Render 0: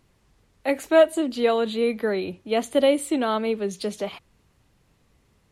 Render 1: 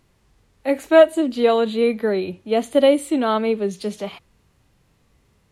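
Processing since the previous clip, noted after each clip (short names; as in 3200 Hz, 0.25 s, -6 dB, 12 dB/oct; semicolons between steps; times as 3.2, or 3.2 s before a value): harmonic-percussive split percussive -7 dB; gain +4.5 dB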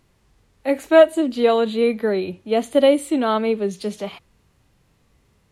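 nothing audible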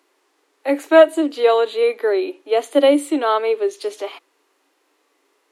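rippled Chebyshev high-pass 280 Hz, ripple 3 dB; gain +4 dB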